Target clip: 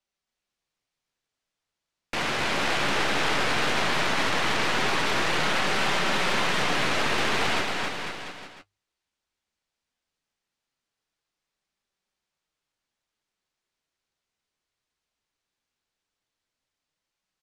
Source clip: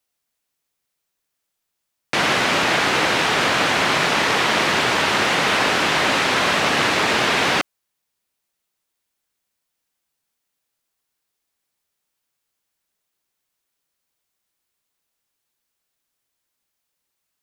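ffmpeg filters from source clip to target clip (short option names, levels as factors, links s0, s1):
-af "lowpass=6000,lowshelf=f=95:g=6,bandreject=f=50:t=h:w=6,bandreject=f=100:t=h:w=6,alimiter=limit=0.178:level=0:latency=1:release=15,aeval=exprs='0.178*(cos(1*acos(clip(val(0)/0.178,-1,1)))-cos(1*PI/2))+0.0316*(cos(4*acos(clip(val(0)/0.178,-1,1)))-cos(4*PI/2))':c=same,flanger=delay=5.1:depth=9.4:regen=-38:speed=0.17:shape=sinusoidal,aecho=1:1:270|499.5|694.6|860.4|1001:0.631|0.398|0.251|0.158|0.1,volume=0.891" -ar 44100 -c:a libvorbis -b:a 192k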